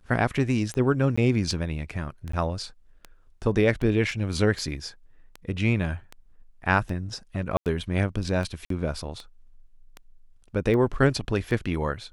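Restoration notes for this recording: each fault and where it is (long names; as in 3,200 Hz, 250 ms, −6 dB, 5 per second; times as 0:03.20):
scratch tick 78 rpm −22 dBFS
0:01.16–0:01.18: drop-out 15 ms
0:02.32–0:02.33: drop-out
0:04.11: drop-out 2.8 ms
0:07.57–0:07.66: drop-out 88 ms
0:08.65–0:08.70: drop-out 53 ms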